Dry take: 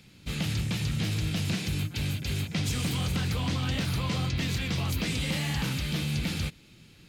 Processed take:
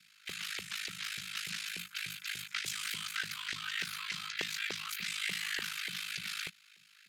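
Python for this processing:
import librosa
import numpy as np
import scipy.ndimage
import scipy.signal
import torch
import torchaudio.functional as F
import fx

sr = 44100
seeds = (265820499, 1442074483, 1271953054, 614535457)

y = x * np.sin(2.0 * np.pi * 26.0 * np.arange(len(x)) / sr)
y = scipy.signal.sosfilt(scipy.signal.cheby1(3, 1.0, [180.0, 1400.0], 'bandstop', fs=sr, output='sos'), y)
y = fx.filter_lfo_highpass(y, sr, shape='saw_up', hz=3.4, low_hz=390.0, high_hz=2000.0, q=2.7)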